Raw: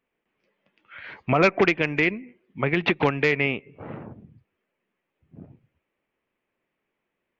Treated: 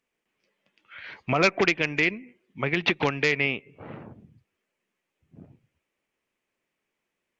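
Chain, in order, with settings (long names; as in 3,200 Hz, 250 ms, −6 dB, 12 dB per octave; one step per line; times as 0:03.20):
parametric band 6,400 Hz +12 dB 1.9 octaves
level −4 dB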